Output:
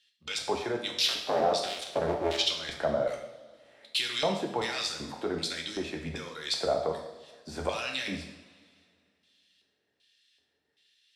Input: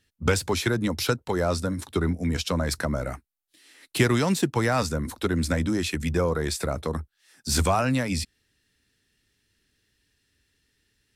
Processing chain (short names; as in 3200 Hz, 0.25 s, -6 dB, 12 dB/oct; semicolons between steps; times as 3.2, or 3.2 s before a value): 0.97–2.38 cycle switcher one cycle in 2, inverted; HPF 60 Hz; bell 1100 Hz -4.5 dB 1.4 oct; limiter -19 dBFS, peak gain reduction 9.5 dB; LFO band-pass square 1.3 Hz 700–3500 Hz; two-slope reverb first 0.73 s, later 2.4 s, from -18 dB, DRR 1.5 dB; gain +8 dB